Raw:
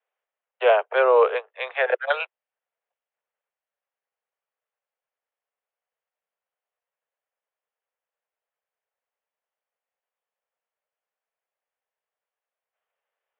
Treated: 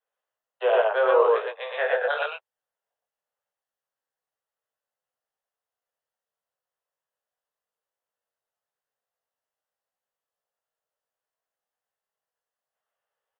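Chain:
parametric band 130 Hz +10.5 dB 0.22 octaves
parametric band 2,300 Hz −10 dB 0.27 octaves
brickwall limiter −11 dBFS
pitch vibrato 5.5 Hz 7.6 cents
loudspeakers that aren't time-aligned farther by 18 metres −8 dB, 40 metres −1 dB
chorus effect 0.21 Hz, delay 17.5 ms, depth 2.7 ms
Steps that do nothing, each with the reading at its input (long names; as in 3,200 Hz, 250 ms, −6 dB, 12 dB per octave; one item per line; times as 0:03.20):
parametric band 130 Hz: nothing at its input below 340 Hz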